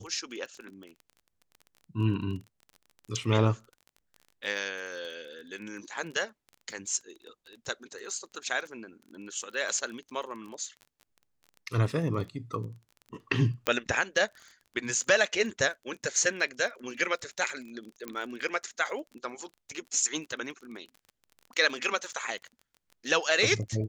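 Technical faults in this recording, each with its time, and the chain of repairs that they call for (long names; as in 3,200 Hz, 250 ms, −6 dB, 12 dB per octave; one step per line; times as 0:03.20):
surface crackle 24 per second −39 dBFS
0:13.67: click −10 dBFS
0:18.08: click −20 dBFS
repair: click removal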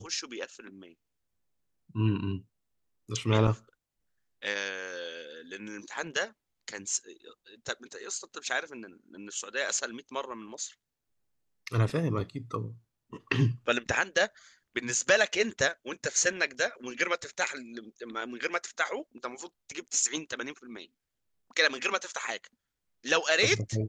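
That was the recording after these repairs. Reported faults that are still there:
none of them is left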